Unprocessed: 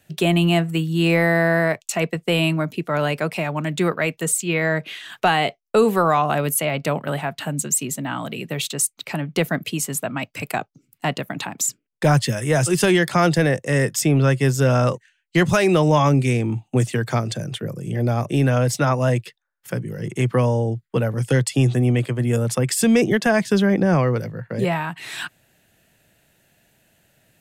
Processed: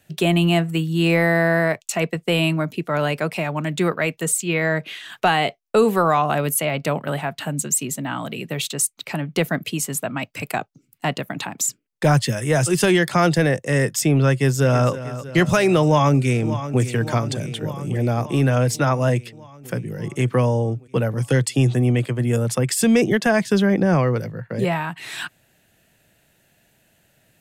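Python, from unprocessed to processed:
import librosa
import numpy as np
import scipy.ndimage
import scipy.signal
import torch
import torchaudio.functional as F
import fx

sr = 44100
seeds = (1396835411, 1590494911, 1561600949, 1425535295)

y = fx.echo_throw(x, sr, start_s=14.32, length_s=0.59, ms=320, feedback_pct=65, wet_db=-13.5)
y = fx.echo_throw(y, sr, start_s=15.84, length_s=0.97, ms=580, feedback_pct=70, wet_db=-12.0)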